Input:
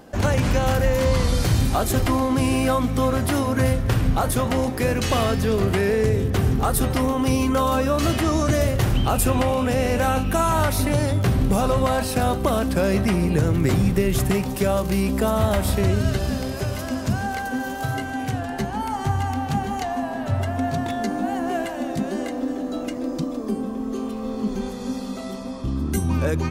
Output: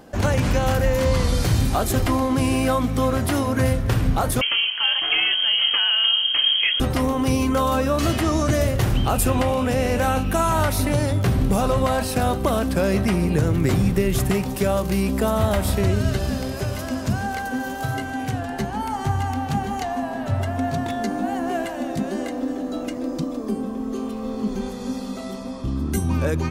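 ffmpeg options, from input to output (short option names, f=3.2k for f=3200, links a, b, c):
-filter_complex "[0:a]asettb=1/sr,asplit=3[a][b][c];[a]atrim=end=4.414[d];[b]atrim=start=4.41:end=6.8,asetpts=PTS-STARTPTS,afade=t=in:d=0.004:c=qsin,afade=t=out:st=2.386:d=0.004:c=qsin,lowpass=f=2.8k:t=q:w=0.5098,lowpass=f=2.8k:t=q:w=0.6013,lowpass=f=2.8k:t=q:w=0.9,lowpass=f=2.8k:t=q:w=2.563,afreqshift=-3300[e];[c]atrim=start=6.796[f];[d][e]acrossfade=d=0.004:c1=hsin:c2=qsin[g];[g][f]acrossfade=d=0.004:c1=qsin:c2=hsin"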